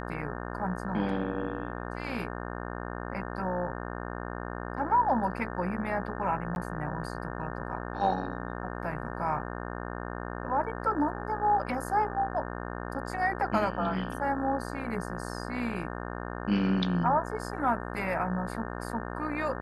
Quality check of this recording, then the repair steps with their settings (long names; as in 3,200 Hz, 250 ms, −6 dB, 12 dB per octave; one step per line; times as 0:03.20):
mains buzz 60 Hz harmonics 30 −37 dBFS
0:06.55–0:06.56: drop-out 11 ms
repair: hum removal 60 Hz, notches 30
repair the gap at 0:06.55, 11 ms